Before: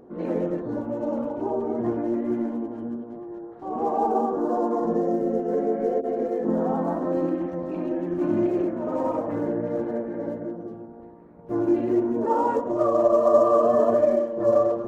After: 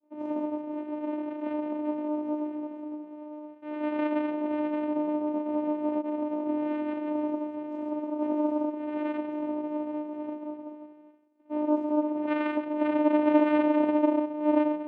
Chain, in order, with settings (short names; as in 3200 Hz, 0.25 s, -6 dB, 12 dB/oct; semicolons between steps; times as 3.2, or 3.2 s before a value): expander -39 dBFS; vocoder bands 4, saw 301 Hz; gain -4 dB